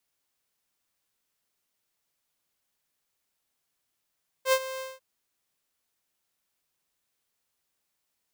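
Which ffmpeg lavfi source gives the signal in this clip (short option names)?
-f lavfi -i "aevalsrc='0.168*(2*mod(525*t,1)-1)':d=0.545:s=44100,afade=t=in:d=0.076,afade=t=out:st=0.076:d=0.06:silence=0.168,afade=t=out:st=0.35:d=0.195"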